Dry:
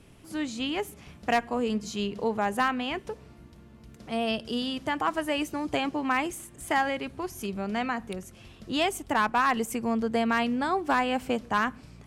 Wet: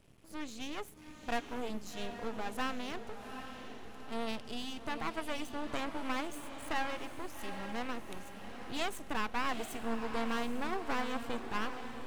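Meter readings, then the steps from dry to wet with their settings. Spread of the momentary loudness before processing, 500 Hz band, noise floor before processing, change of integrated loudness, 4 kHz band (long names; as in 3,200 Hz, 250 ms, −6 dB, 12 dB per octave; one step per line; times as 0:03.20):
10 LU, −10.5 dB, −52 dBFS, −10.5 dB, −8.5 dB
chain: half-wave rectification
feedback delay with all-pass diffusion 797 ms, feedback 51%, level −8.5 dB
level −6 dB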